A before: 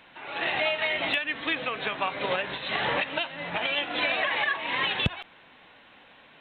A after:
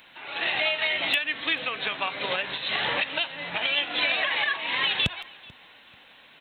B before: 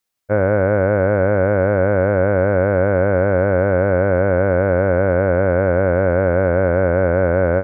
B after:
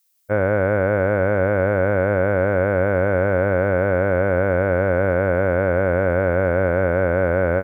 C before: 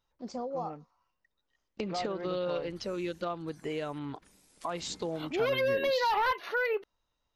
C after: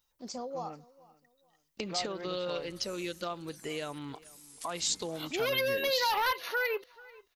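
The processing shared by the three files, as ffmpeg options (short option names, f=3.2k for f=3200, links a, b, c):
-filter_complex "[0:a]crystalizer=i=4.5:c=0,asplit=2[a][b];[b]adelay=438,lowpass=f=4.8k:p=1,volume=-22dB,asplit=2[c][d];[d]adelay=438,lowpass=f=4.8k:p=1,volume=0.29[e];[c][e]amix=inputs=2:normalize=0[f];[a][f]amix=inputs=2:normalize=0,volume=-3.5dB"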